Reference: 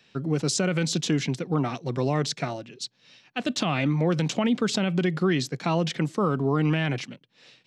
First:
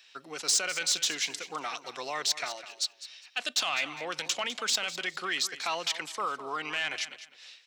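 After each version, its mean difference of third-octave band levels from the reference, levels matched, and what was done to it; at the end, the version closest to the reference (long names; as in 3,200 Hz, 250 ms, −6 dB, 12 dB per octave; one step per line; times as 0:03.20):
11.5 dB: high-pass filter 880 Hz 12 dB per octave
high-shelf EQ 2,500 Hz +9 dB
soft clipping −16.5 dBFS, distortion −16 dB
repeating echo 203 ms, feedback 24%, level −14 dB
level −2 dB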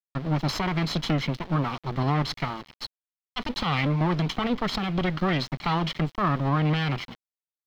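6.0 dB: lower of the sound and its delayed copy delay 0.96 ms
parametric band 1,200 Hz +3 dB 0.82 octaves
centre clipping without the shift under −39.5 dBFS
high shelf with overshoot 5,900 Hz −13.5 dB, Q 1.5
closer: second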